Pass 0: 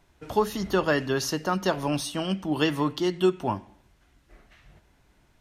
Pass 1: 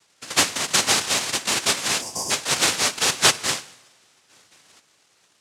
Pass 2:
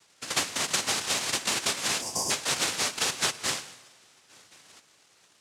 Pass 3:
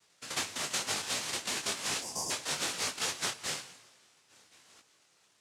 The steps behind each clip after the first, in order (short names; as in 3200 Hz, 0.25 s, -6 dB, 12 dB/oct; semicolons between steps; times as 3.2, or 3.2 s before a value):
noise vocoder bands 1; spectral gain 2.02–2.31, 1100–4600 Hz -23 dB; two-slope reverb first 0.81 s, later 3.1 s, from -18 dB, DRR 16.5 dB; gain +3.5 dB
compressor 10:1, threshold -24 dBFS, peak gain reduction 13.5 dB
detuned doubles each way 36 cents; gain -2.5 dB